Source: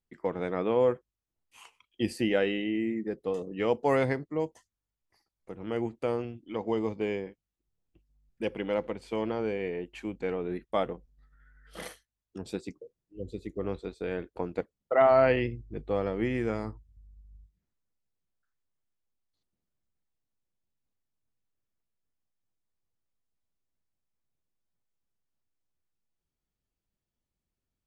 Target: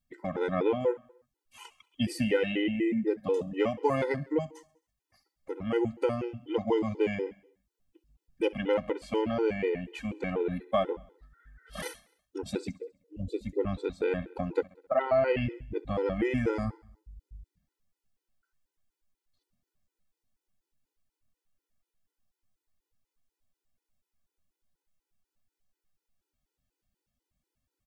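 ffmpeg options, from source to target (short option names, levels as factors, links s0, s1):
-af "acompressor=threshold=0.0447:ratio=6,aecho=1:1:66|132|198|264|330:0.0891|0.0526|0.031|0.0183|0.0108,afftfilt=real='re*gt(sin(2*PI*4.1*pts/sr)*(1-2*mod(floor(b*sr/1024/260),2)),0)':imag='im*gt(sin(2*PI*4.1*pts/sr)*(1-2*mod(floor(b*sr/1024/260),2)),0)':win_size=1024:overlap=0.75,volume=2.24"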